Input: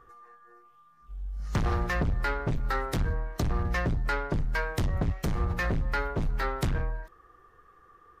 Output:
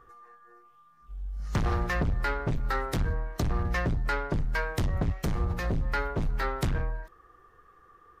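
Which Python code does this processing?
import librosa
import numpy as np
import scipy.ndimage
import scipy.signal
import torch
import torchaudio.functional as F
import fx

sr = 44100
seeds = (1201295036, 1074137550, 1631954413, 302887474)

y = fx.dynamic_eq(x, sr, hz=1800.0, q=0.88, threshold_db=-43.0, ratio=4.0, max_db=-7, at=(5.35, 5.83))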